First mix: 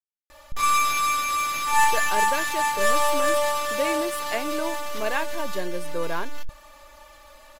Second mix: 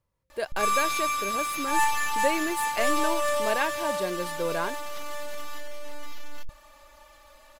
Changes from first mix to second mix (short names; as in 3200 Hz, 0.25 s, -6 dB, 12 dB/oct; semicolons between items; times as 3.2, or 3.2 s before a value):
speech: entry -1.55 s; background -4.5 dB